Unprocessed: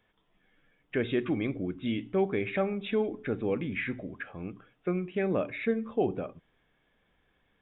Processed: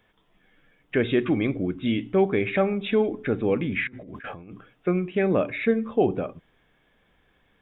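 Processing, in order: 3.87–4.52 s: compressor with a negative ratio -48 dBFS, ratio -1; trim +6.5 dB

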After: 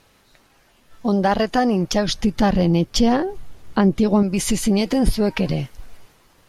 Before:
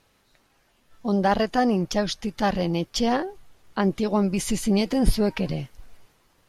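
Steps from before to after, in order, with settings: 2.08–4.23 s: bass shelf 350 Hz +9 dB; compression 2:1, threshold -25 dBFS, peak gain reduction 8 dB; trim +7.5 dB

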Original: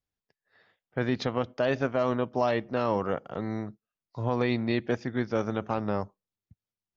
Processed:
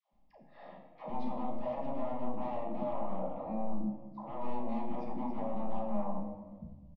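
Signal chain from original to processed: doubling 36 ms -4.5 dB; sine folder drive 15 dB, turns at -10.5 dBFS; peak limiter -22.5 dBFS, peak gain reduction 12 dB; dynamic bell 850 Hz, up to +6 dB, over -42 dBFS, Q 0.96; reverse; compression 12:1, threshold -35 dBFS, peak gain reduction 15 dB; reverse; low-pass 1.2 kHz 12 dB/octave; static phaser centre 410 Hz, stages 6; feedback comb 69 Hz, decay 0.32 s, harmonics all, mix 70%; phase dispersion lows, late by 127 ms, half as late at 530 Hz; reverberation RT60 1.4 s, pre-delay 5 ms, DRR 2.5 dB; trim +7 dB

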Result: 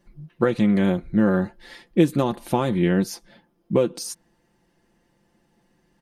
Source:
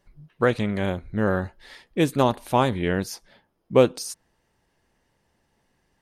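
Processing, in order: compression 12:1, threshold -20 dBFS, peak gain reduction 10.5 dB; peaking EQ 250 Hz +9.5 dB 1.2 oct; comb 5.8 ms, depth 57%

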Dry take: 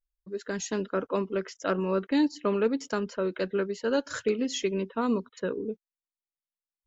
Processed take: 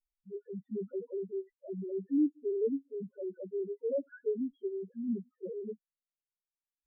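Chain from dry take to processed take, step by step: dead-time distortion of 0.16 ms; loudest bins only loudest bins 1; rotary cabinet horn 0.7 Hz; trim +1.5 dB

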